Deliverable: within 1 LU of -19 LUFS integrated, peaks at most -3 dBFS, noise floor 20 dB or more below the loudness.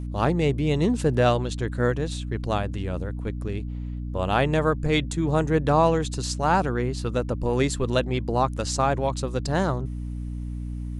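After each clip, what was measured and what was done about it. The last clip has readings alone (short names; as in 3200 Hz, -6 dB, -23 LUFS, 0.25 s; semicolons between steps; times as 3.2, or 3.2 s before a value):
hum 60 Hz; harmonics up to 300 Hz; hum level -29 dBFS; loudness -25.0 LUFS; peak -8.0 dBFS; loudness target -19.0 LUFS
-> de-hum 60 Hz, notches 5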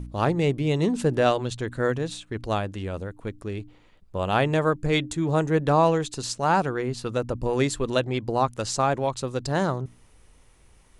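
hum none; loudness -25.5 LUFS; peak -7.0 dBFS; loudness target -19.0 LUFS
-> gain +6.5 dB; limiter -3 dBFS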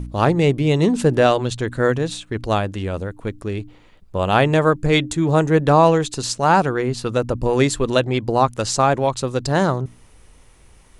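loudness -19.0 LUFS; peak -3.0 dBFS; noise floor -50 dBFS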